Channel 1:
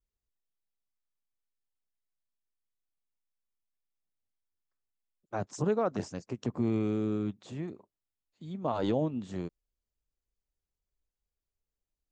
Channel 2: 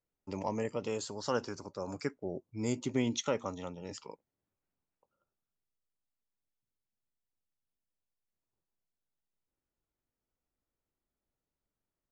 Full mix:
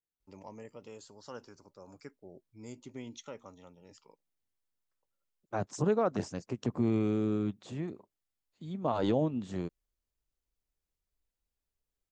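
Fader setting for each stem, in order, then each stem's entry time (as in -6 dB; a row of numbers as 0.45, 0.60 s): +0.5, -13.0 dB; 0.20, 0.00 s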